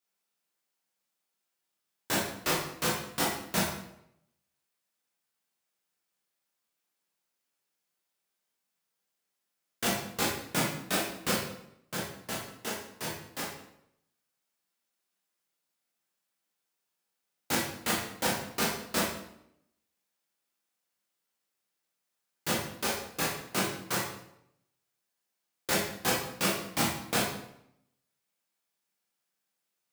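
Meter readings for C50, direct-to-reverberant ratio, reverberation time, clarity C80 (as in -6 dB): 2.0 dB, -5.5 dB, 0.75 s, 6.0 dB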